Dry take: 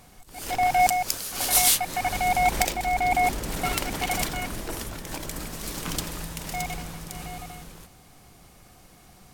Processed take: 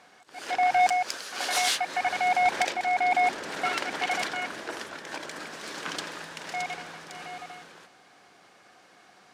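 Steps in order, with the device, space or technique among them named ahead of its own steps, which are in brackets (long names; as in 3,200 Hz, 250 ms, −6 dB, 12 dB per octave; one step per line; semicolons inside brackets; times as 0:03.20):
intercom (band-pass filter 370–5,000 Hz; parametric band 1,600 Hz +7 dB 0.41 octaves; soft clipping −13 dBFS, distortion −21 dB)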